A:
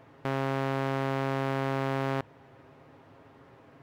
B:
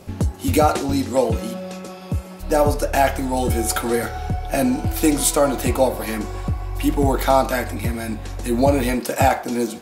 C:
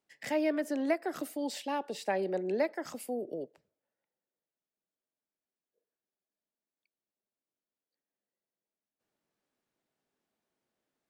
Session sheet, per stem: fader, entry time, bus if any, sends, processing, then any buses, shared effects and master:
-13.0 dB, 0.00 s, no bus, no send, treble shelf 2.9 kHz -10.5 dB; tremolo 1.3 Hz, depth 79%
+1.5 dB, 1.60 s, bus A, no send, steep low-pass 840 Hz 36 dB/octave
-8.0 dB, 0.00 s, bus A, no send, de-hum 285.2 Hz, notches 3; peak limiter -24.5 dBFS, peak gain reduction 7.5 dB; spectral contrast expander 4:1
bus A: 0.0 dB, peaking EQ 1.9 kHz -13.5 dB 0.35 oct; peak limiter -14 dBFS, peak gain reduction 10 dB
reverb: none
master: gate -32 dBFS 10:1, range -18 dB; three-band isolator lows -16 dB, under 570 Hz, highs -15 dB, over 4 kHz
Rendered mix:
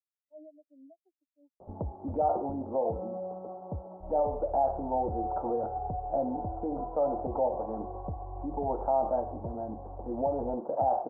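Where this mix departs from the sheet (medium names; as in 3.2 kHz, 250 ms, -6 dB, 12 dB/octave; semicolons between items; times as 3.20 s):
stem A: muted; stem C: missing de-hum 285.2 Hz, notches 3; master: missing gate -32 dBFS 10:1, range -18 dB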